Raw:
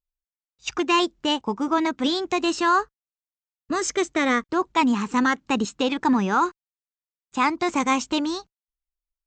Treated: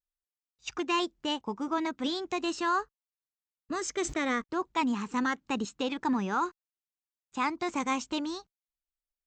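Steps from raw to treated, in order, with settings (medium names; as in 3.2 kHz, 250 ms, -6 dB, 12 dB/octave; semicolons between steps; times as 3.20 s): 3.97–4.42 s: decay stretcher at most 110 dB/s; trim -8.5 dB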